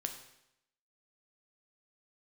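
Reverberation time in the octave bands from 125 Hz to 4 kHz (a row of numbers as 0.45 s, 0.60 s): 0.80 s, 0.80 s, 0.80 s, 0.80 s, 0.80 s, 0.80 s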